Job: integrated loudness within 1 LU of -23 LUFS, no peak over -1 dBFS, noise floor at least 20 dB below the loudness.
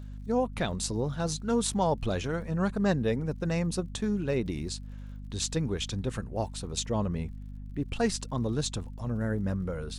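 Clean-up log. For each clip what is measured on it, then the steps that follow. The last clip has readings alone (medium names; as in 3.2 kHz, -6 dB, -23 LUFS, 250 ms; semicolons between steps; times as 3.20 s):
tick rate 52 per s; hum 50 Hz; highest harmonic 250 Hz; hum level -38 dBFS; loudness -31.0 LUFS; peak level -13.0 dBFS; loudness target -23.0 LUFS
-> de-click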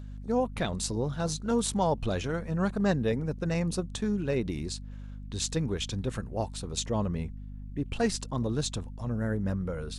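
tick rate 0.20 per s; hum 50 Hz; highest harmonic 250 Hz; hum level -38 dBFS
-> hum notches 50/100/150/200/250 Hz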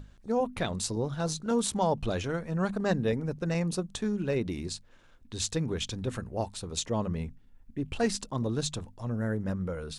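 hum not found; loudness -31.5 LUFS; peak level -14.0 dBFS; loudness target -23.0 LUFS
-> trim +8.5 dB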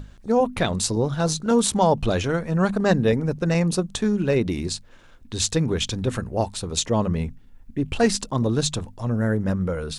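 loudness -23.0 LUFS; peak level -5.5 dBFS; noise floor -48 dBFS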